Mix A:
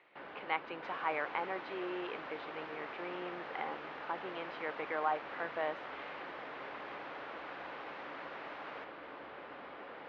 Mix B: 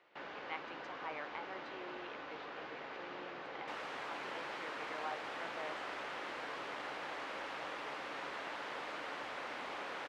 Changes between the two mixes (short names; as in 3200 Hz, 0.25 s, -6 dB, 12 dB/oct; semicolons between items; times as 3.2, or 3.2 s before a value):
speech -11.0 dB; second sound: entry +2.85 s; master: remove air absorption 260 m